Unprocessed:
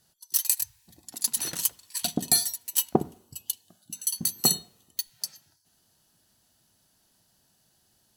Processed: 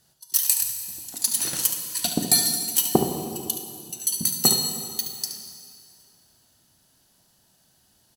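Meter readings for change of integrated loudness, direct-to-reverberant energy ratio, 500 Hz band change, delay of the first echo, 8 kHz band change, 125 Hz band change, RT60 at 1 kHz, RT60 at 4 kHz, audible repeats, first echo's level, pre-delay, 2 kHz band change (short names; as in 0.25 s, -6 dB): +4.5 dB, 3.0 dB, +5.0 dB, 72 ms, +4.5 dB, +4.5 dB, 2.3 s, 2.2 s, 1, -9.5 dB, 8 ms, +5.0 dB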